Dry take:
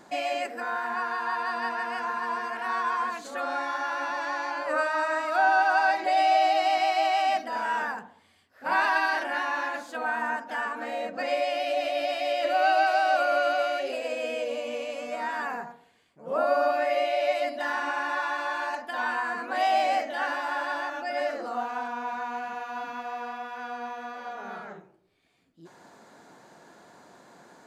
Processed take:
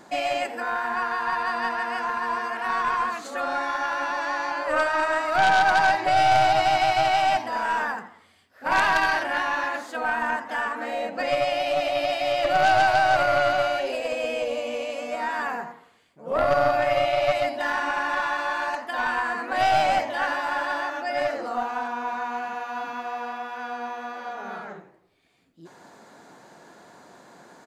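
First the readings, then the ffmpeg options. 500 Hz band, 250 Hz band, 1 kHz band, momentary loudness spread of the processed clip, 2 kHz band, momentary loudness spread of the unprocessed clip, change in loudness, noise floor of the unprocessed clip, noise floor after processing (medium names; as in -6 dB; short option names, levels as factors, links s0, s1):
+3.0 dB, +3.5 dB, +3.0 dB, 12 LU, +3.5 dB, 13 LU, +3.5 dB, -60 dBFS, -55 dBFS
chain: -filter_complex "[0:a]aeval=exprs='0.282*(cos(1*acos(clip(val(0)/0.282,-1,1)))-cos(1*PI/2))+0.0562*(cos(5*acos(clip(val(0)/0.282,-1,1)))-cos(5*PI/2))+0.0708*(cos(6*acos(clip(val(0)/0.282,-1,1)))-cos(6*PI/2))+0.0224*(cos(7*acos(clip(val(0)/0.282,-1,1)))-cos(7*PI/2))+0.0398*(cos(8*acos(clip(val(0)/0.282,-1,1)))-cos(8*PI/2))':c=same,asplit=5[s0][s1][s2][s3][s4];[s1]adelay=85,afreqshift=110,volume=0.126[s5];[s2]adelay=170,afreqshift=220,volume=0.0582[s6];[s3]adelay=255,afreqshift=330,volume=0.0266[s7];[s4]adelay=340,afreqshift=440,volume=0.0123[s8];[s0][s5][s6][s7][s8]amix=inputs=5:normalize=0"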